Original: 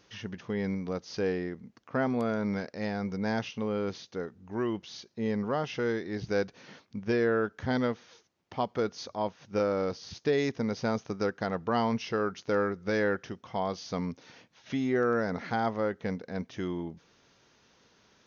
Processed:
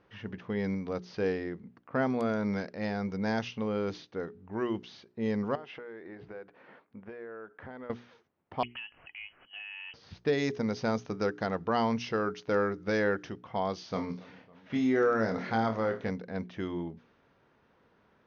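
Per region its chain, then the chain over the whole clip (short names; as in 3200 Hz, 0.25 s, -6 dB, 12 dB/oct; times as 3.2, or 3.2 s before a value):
5.55–7.9 tone controls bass -13 dB, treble -14 dB + compressor 8:1, threshold -40 dBFS
8.63–9.94 inverted band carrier 3100 Hz + compressor 10:1, threshold -37 dBFS
13.81–16.09 flutter echo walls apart 4.6 m, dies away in 0.23 s + warbling echo 0.277 s, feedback 67%, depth 63 cents, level -21.5 dB
whole clip: notches 60/120/180/240/300/360/420 Hz; low-pass opened by the level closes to 1600 Hz, open at -24.5 dBFS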